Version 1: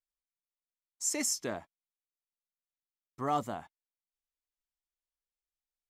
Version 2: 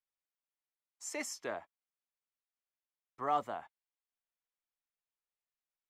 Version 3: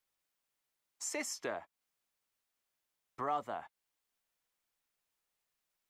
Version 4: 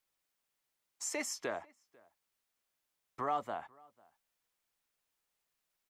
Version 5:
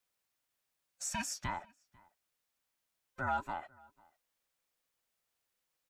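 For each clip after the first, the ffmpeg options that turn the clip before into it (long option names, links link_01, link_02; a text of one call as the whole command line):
ffmpeg -i in.wav -filter_complex "[0:a]acrossover=split=420 3300:gain=0.224 1 0.224[link_01][link_02][link_03];[link_01][link_02][link_03]amix=inputs=3:normalize=0" out.wav
ffmpeg -i in.wav -af "acompressor=threshold=-51dB:ratio=2,volume=9dB" out.wav
ffmpeg -i in.wav -filter_complex "[0:a]asplit=2[link_01][link_02];[link_02]adelay=495.6,volume=-26dB,highshelf=frequency=4000:gain=-11.2[link_03];[link_01][link_03]amix=inputs=2:normalize=0,volume=1dB" out.wav
ffmpeg -i in.wav -af "afftfilt=real='real(if(between(b,1,1008),(2*floor((b-1)/24)+1)*24-b,b),0)':imag='imag(if(between(b,1,1008),(2*floor((b-1)/24)+1)*24-b,b),0)*if(between(b,1,1008),-1,1)':win_size=2048:overlap=0.75" out.wav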